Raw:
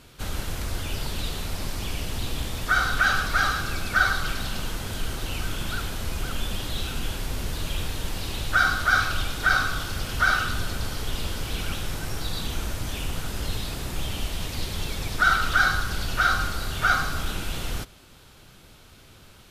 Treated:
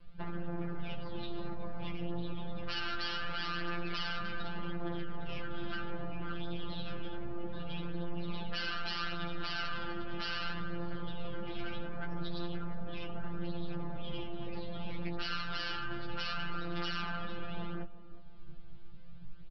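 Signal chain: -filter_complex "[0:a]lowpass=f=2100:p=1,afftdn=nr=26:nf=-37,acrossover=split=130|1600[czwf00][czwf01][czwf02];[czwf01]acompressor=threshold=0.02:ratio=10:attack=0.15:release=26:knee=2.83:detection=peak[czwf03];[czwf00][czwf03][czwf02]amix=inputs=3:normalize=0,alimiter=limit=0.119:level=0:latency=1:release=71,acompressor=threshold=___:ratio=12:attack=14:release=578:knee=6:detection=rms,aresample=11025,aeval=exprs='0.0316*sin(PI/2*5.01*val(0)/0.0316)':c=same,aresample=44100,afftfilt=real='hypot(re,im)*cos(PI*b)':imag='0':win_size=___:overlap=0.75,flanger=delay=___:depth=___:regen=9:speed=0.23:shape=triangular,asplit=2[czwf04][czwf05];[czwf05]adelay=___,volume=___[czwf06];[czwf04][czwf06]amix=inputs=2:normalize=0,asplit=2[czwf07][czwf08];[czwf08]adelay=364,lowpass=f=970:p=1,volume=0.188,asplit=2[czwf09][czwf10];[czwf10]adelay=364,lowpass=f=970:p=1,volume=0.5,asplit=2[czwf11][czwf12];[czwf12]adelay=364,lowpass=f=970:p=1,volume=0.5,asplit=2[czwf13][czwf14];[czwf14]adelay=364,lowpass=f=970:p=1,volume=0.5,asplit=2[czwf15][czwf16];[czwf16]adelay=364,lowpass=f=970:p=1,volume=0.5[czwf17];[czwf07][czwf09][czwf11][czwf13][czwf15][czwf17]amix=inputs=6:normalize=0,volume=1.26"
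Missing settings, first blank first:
0.0141, 1024, 9.6, 7.7, 15, 0.316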